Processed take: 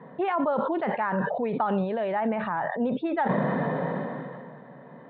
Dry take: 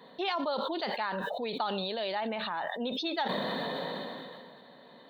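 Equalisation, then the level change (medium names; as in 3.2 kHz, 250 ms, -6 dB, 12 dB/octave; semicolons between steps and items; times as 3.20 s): low-pass 2.1 kHz 24 dB/octave; distance through air 240 m; peaking EQ 140 Hz +12.5 dB 0.71 oct; +7.0 dB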